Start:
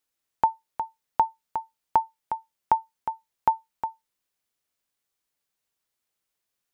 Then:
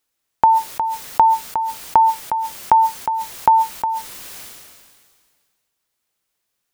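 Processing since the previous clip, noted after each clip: sustainer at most 31 dB/s; gain +7 dB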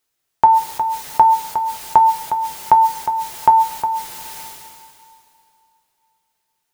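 two-slope reverb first 0.24 s, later 3.4 s, from -21 dB, DRR 4.5 dB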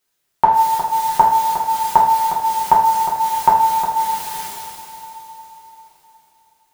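two-slope reverb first 0.57 s, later 4.4 s, from -15 dB, DRR -3.5 dB; gain -1 dB

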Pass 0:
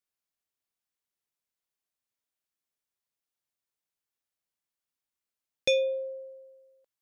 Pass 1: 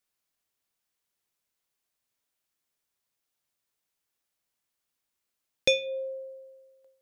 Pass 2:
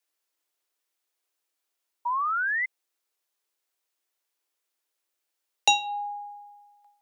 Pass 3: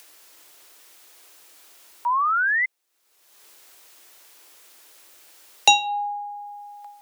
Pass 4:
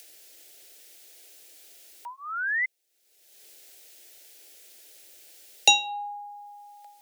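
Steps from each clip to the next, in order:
de-hum 88.43 Hz, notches 23; in parallel at -3 dB: compressor, threshold -35 dBFS, peak gain reduction 12 dB; on the sum: gain +2 dB
dynamic EQ 6200 Hz, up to +6 dB, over -44 dBFS, Q 1; painted sound rise, 2.05–2.66, 650–1800 Hz -28 dBFS; frequency shift +290 Hz; gain +1.5 dB
upward compressor, threshold -36 dBFS; gain +5.5 dB
fixed phaser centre 450 Hz, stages 4

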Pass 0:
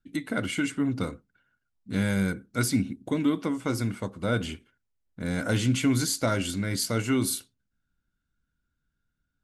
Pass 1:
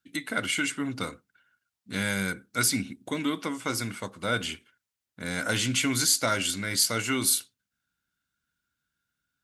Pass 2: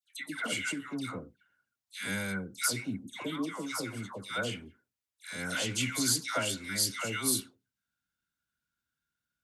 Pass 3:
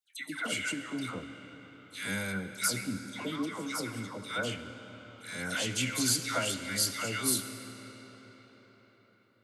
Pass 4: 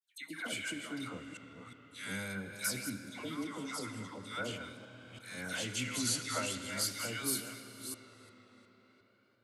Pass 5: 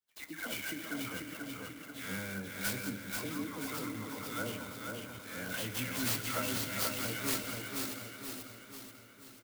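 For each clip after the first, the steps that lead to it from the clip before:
HPF 78 Hz; tilt shelf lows -6.5 dB, about 780 Hz
dispersion lows, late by 0.149 s, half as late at 1200 Hz; gain -5.5 dB
reverb RT60 5.2 s, pre-delay 25 ms, DRR 9 dB
reverse delay 0.346 s, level -9 dB; vibrato 0.44 Hz 68 cents; gain -5.5 dB
on a send: feedback echo 0.485 s, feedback 52%, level -4 dB; on the sum: clock jitter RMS 0.045 ms

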